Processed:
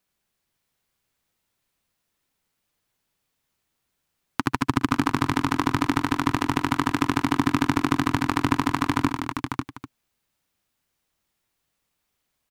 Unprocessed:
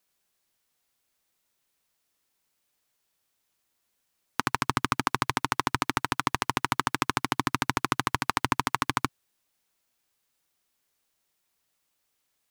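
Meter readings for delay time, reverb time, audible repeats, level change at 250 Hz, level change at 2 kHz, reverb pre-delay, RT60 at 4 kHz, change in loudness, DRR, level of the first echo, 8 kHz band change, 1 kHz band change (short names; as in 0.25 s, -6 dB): 64 ms, none, 6, +11.0 dB, +1.5 dB, none, none, +4.0 dB, none, -18.5 dB, -2.0 dB, +2.0 dB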